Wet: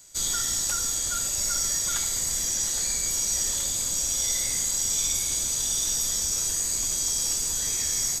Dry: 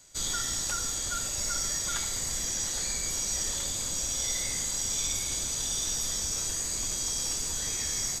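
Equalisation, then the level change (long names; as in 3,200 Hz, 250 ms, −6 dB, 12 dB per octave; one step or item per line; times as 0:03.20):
high-shelf EQ 7,100 Hz +11 dB
0.0 dB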